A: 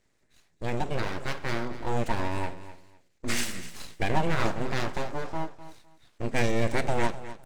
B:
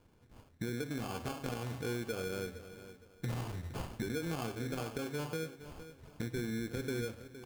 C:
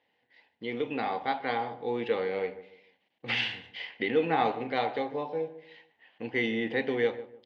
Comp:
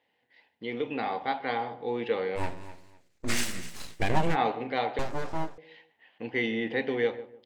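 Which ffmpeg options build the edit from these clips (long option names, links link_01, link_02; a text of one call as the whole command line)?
ffmpeg -i take0.wav -i take1.wav -i take2.wav -filter_complex "[0:a]asplit=2[link_01][link_02];[2:a]asplit=3[link_03][link_04][link_05];[link_03]atrim=end=2.41[link_06];[link_01]atrim=start=2.35:end=4.37[link_07];[link_04]atrim=start=4.31:end=4.992[link_08];[link_02]atrim=start=4.988:end=5.582[link_09];[link_05]atrim=start=5.578[link_10];[link_06][link_07]acrossfade=duration=0.06:curve1=tri:curve2=tri[link_11];[link_11][link_08]acrossfade=duration=0.06:curve1=tri:curve2=tri[link_12];[link_12][link_09]acrossfade=duration=0.004:curve1=hsin:curve2=hsin[link_13];[link_13][link_10]acrossfade=duration=0.004:curve1=hsin:curve2=hsin" out.wav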